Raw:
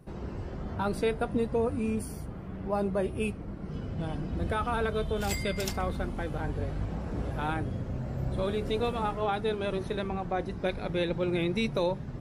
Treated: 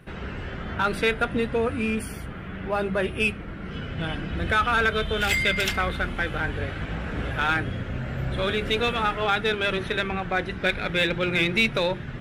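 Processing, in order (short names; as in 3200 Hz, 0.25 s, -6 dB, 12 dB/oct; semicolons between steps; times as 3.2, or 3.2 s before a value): band shelf 2200 Hz +12.5 dB; notches 50/100/150/200/250/300/350 Hz; in parallel at -5 dB: overloaded stage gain 24.5 dB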